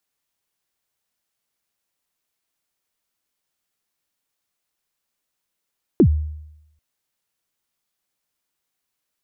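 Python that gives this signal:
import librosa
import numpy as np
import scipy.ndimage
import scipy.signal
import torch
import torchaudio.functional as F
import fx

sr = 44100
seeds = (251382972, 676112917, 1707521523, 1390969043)

y = fx.drum_kick(sr, seeds[0], length_s=0.79, level_db=-7.0, start_hz=410.0, end_hz=76.0, sweep_ms=78.0, decay_s=0.86, click=False)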